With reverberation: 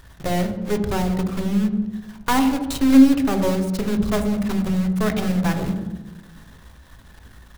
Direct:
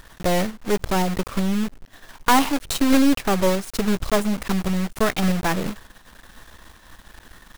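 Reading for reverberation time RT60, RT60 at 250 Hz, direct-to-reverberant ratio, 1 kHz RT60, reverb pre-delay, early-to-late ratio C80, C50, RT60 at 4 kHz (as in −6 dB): 1.2 s, 1.5 s, 5.5 dB, 1.1 s, 3 ms, 10.5 dB, 9.0 dB, 0.85 s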